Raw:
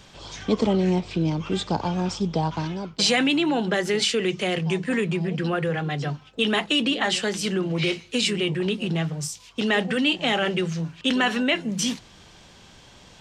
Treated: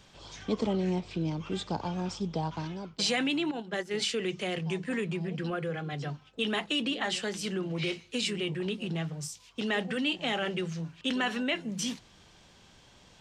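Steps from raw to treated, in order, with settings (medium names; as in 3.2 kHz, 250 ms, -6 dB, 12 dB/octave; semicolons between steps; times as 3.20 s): 3.51–3.94 s: gate -22 dBFS, range -11 dB; 5.50–5.93 s: comb of notches 920 Hz; trim -8 dB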